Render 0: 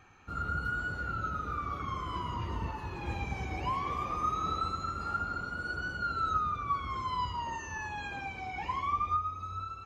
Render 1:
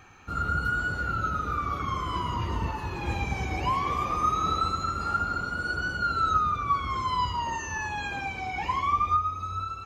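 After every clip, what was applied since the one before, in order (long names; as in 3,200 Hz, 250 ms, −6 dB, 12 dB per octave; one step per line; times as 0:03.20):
high-shelf EQ 4,900 Hz +5 dB
level +6 dB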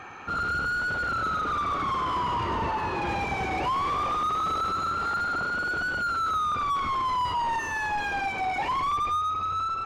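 mid-hump overdrive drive 28 dB, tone 1,000 Hz, clips at −12.5 dBFS
level −4.5 dB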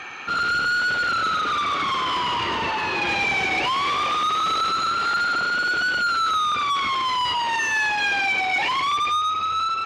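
meter weighting curve D
level +2.5 dB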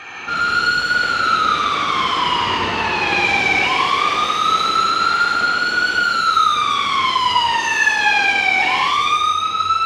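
reverb whose tail is shaped and stops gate 260 ms flat, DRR −4.5 dB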